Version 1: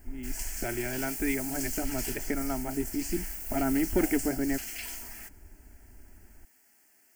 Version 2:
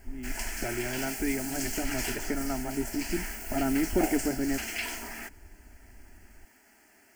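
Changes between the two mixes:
background +11.0 dB
master: add low-pass filter 2,400 Hz 6 dB per octave

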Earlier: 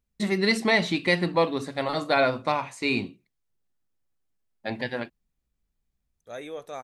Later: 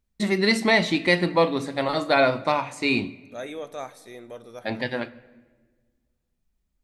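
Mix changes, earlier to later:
second voice: entry −2.95 s
reverb: on, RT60 1.4 s

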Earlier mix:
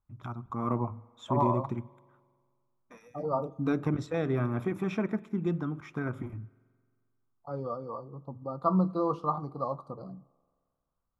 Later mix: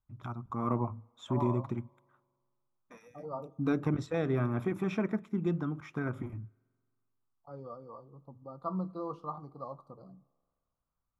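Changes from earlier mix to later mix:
first voice: send −9.0 dB
second voice −9.5 dB

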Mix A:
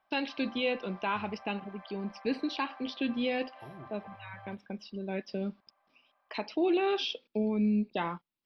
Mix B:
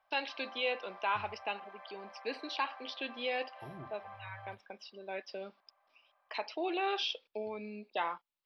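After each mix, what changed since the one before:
first voice: add Chebyshev high-pass filter 660 Hz, order 2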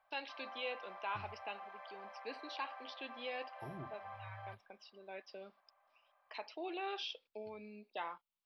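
first voice −8.0 dB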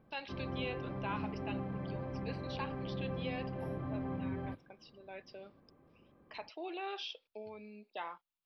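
background: remove Butterworth high-pass 620 Hz 72 dB per octave
master: add low-shelf EQ 140 Hz +3.5 dB

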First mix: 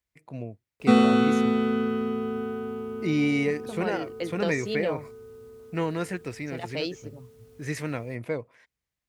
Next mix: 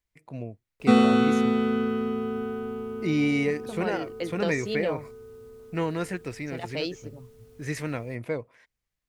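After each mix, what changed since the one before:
master: remove high-pass filter 55 Hz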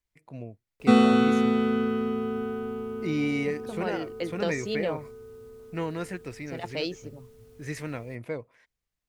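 first voice −3.5 dB

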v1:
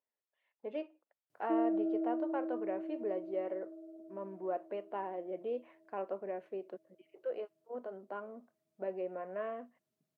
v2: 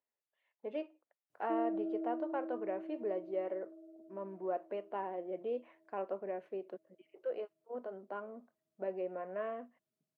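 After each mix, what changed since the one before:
background −4.5 dB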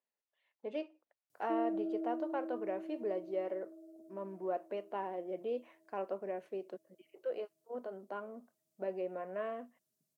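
master: add bass and treble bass +2 dB, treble +14 dB

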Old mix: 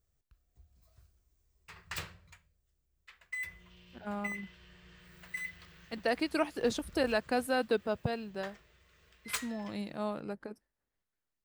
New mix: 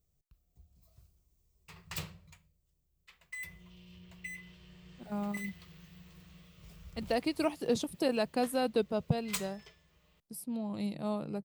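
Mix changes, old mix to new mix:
speech: entry +1.05 s
master: add graphic EQ with 15 bands 160 Hz +8 dB, 1,600 Hz −9 dB, 16,000 Hz +6 dB

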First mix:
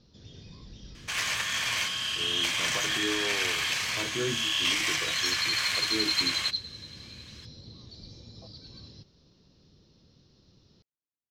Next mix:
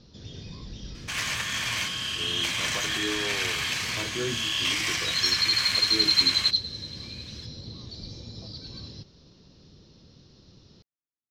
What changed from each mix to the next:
first sound +7.0 dB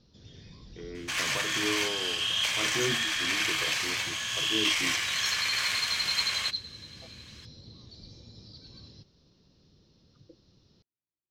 speech: entry −1.40 s
first sound −9.0 dB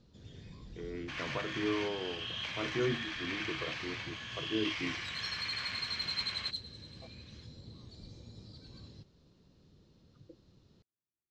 first sound: remove Chebyshev low-pass filter 5,600 Hz, order 5
second sound −7.5 dB
master: add high-frequency loss of the air 210 metres

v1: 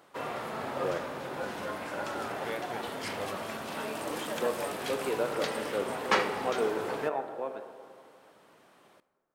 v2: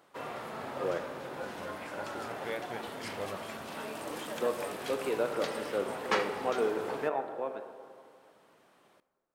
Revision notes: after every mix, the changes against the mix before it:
background −4.0 dB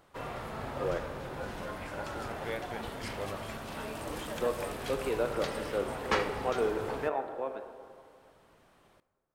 background: remove high-pass filter 200 Hz 12 dB per octave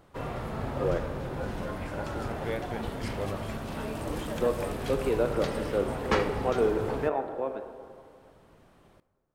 master: add low-shelf EQ 470 Hz +9 dB

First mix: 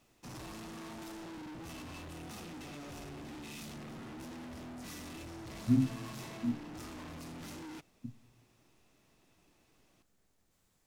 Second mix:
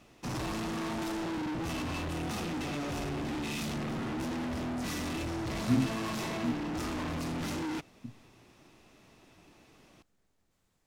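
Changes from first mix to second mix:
background +11.5 dB
master: add high-shelf EQ 6,400 Hz −7 dB

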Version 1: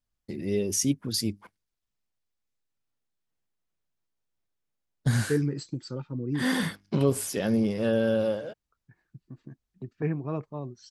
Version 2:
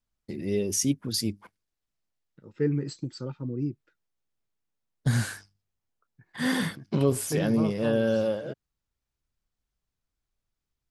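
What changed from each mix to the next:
second voice: entry −2.70 s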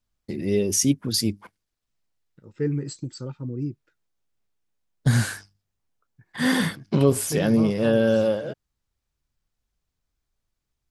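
first voice +5.0 dB
second voice: remove band-pass filter 120–5,500 Hz

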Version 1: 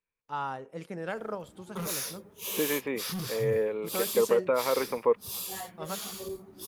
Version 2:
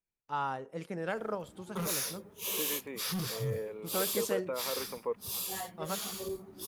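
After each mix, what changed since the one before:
second voice −10.5 dB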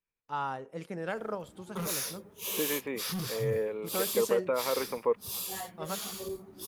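second voice +7.0 dB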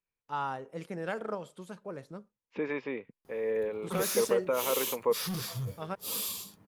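background: entry +2.15 s

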